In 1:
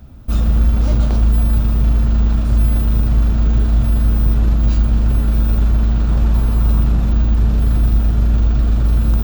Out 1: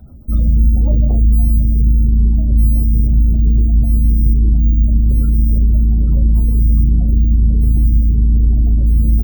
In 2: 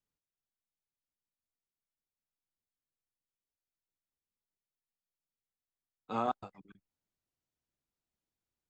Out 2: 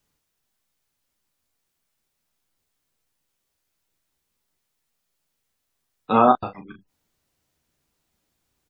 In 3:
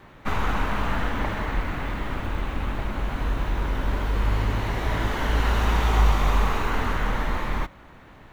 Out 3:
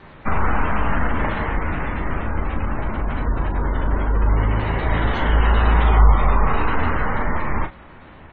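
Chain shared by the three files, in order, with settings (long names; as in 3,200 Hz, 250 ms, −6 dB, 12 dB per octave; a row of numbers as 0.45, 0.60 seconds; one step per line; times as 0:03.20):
gate on every frequency bin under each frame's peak −30 dB strong
ambience of single reflections 13 ms −9.5 dB, 37 ms −8 dB
normalise the peak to −2 dBFS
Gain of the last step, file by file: 0.0, +16.5, +4.5 decibels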